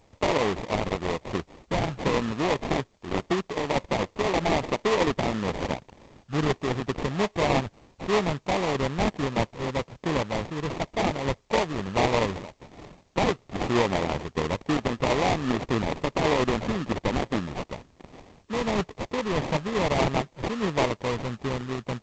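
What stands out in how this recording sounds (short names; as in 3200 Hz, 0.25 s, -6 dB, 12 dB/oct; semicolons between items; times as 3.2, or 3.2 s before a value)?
aliases and images of a low sample rate 1500 Hz, jitter 20%; tremolo saw down 1.6 Hz, depth 30%; a quantiser's noise floor 12-bit, dither triangular; G.722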